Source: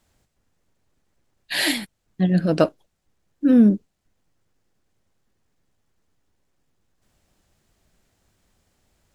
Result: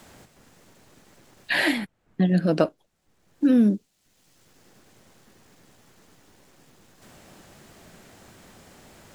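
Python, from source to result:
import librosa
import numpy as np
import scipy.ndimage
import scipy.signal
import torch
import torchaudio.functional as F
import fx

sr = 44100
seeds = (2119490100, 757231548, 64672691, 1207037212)

y = fx.band_squash(x, sr, depth_pct=70)
y = y * librosa.db_to_amplitude(-1.0)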